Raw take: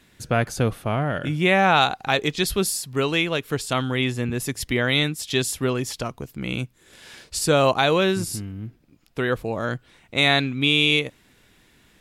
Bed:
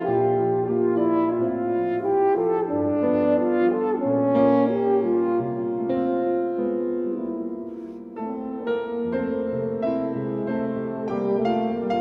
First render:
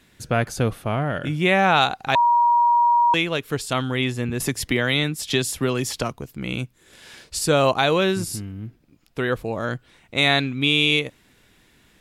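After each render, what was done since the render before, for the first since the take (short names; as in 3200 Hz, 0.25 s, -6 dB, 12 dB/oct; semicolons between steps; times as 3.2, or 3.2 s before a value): 2.15–3.14 bleep 952 Hz -13.5 dBFS; 4.4–6.13 three-band squash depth 70%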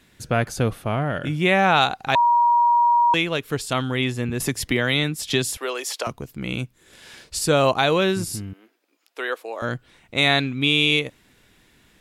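5.57–6.07 HPF 440 Hz 24 dB/oct; 8.53–9.62 Bessel high-pass 560 Hz, order 6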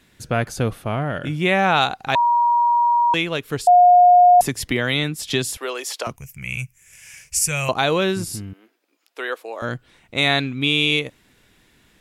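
3.67–4.41 bleep 715 Hz -7.5 dBFS; 6.16–7.69 EQ curve 140 Hz 0 dB, 280 Hz -21 dB, 580 Hz -13 dB, 1400 Hz -8 dB, 2400 Hz +8 dB, 3900 Hz -16 dB, 5800 Hz +8 dB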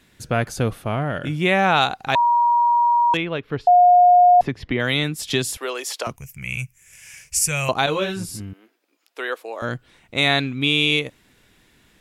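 3.17–4.8 air absorption 310 m; 7.86–8.4 ensemble effect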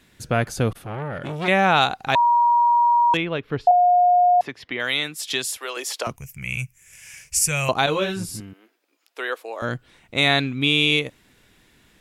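0.72–1.48 core saturation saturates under 2000 Hz; 3.71–5.77 HPF 850 Hz 6 dB/oct; 8.4–9.6 HPF 260 Hz 6 dB/oct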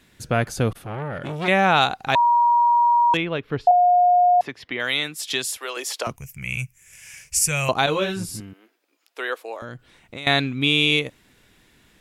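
9.56–10.27 compressor, threshold -31 dBFS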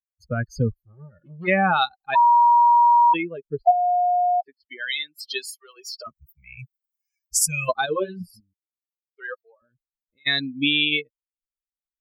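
per-bin expansion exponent 3; in parallel at -1 dB: compressor, threshold -26 dBFS, peak gain reduction 12 dB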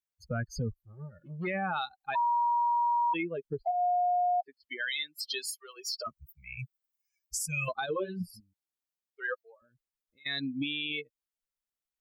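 compressor 2:1, threshold -29 dBFS, peak gain reduction 10 dB; limiter -24 dBFS, peak gain reduction 10 dB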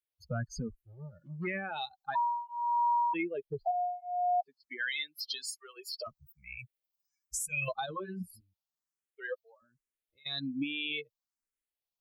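endless phaser +1.2 Hz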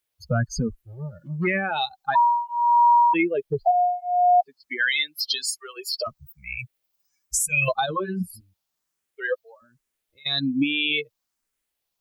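gain +12 dB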